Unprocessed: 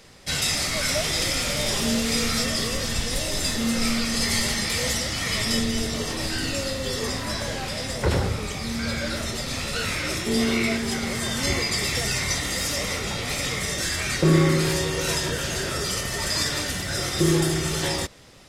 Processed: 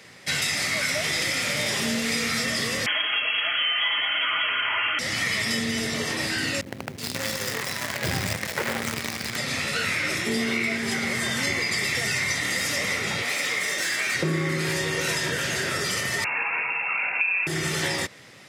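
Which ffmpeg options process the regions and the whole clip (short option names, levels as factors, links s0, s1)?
-filter_complex "[0:a]asettb=1/sr,asplit=3[s0][s1][s2];[s0]atrim=end=2.864[s3];[s1]atrim=start=2.86:end=4.99,asetpts=PTS-STARTPTS,afade=t=in:d=0.004:c=qsin,afade=t=out:st=2.126:d=0.004:c=qsin,equalizer=f=930:t=o:w=2.4:g=9.5,aecho=1:1:5.3:0.67,atrim=end_sample=93933,lowpass=f=2800:t=q:w=0.5098,lowpass=f=2800:t=q:w=0.6013,lowpass=f=2800:t=q:w=0.9,lowpass=f=2800:t=q:w=2.563,afreqshift=-3300[s4];[s2]atrim=start=4.986[s5];[s3][s4]acrossfade=d=0.004:c1=hsin:c2=qsin[s6];[s6][s5]acrossfade=d=0.004:c1=qsin:c2=hsin,asettb=1/sr,asplit=3[s7][s8][s9];[s7]atrim=end=6.614[s10];[s8]atrim=start=6.61:end=9.36,asetpts=PTS-STARTPTS,afade=t=in:d=0.004:c=qsin,afade=t=out:st=2.746:d=0.004:c=qsin,lowpass=11000,acrossover=split=350|2800[s11][s12][s13];[s13]adelay=370[s14];[s12]adelay=540[s15];[s11][s15][s14]amix=inputs=3:normalize=0,atrim=end_sample=121275,acrusher=bits=5:dc=4:mix=0:aa=0.000001[s16];[s9]atrim=start=9.356[s17];[s10][s16]acrossfade=d=0.004:c1=hsin:c2=qsin[s18];[s18][s17]acrossfade=d=0.004:c1=qsin:c2=hsin,asettb=1/sr,asplit=3[s19][s20][s21];[s19]atrim=end=13.224[s22];[s20]atrim=start=13.22:end=14.15,asetpts=PTS-STARTPTS,afade=t=in:d=0.004:c=qsin,afade=t=out:st=0.926:d=0.004:c=qsin,highpass=310,aeval=exprs='clip(val(0),-1,0.0473)':c=same,aeval=exprs='val(0)+0.00355*(sin(2*PI*60*n/s)+sin(2*PI*2*60*n/s)/2+sin(2*PI*3*60*n/s)/3+sin(2*PI*4*60*n/s)/4+sin(2*PI*5*60*n/s)/5)':c=same[s23];[s21]atrim=start=14.146[s24];[s22][s23]acrossfade=d=0.004:c1=hsin:c2=qsin[s25];[s25][s24]acrossfade=d=0.004:c1=qsin:c2=hsin,asettb=1/sr,asplit=3[s26][s27][s28];[s26]atrim=end=16.244[s29];[s27]atrim=start=16.24:end=17.47,asetpts=PTS-STARTPTS,afade=t=in:d=0.004:c=qsin,afade=t=out:st=1.226:d=0.004:c=qsin,lowpass=f=2400:t=q:w=0.5098,lowpass=f=2400:t=q:w=0.6013,lowpass=f=2400:t=q:w=0.9,lowpass=f=2400:t=q:w=2.563,afreqshift=-2800,highpass=93[s30];[s28]atrim=start=17.466[s31];[s29][s30]acrossfade=d=0.004:c1=hsin:c2=qsin[s32];[s32][s31]acrossfade=d=0.004:c1=qsin:c2=hsin,highpass=f=100:w=0.5412,highpass=f=100:w=1.3066,equalizer=f=2000:t=o:w=0.82:g=8.5,acompressor=threshold=0.0794:ratio=6"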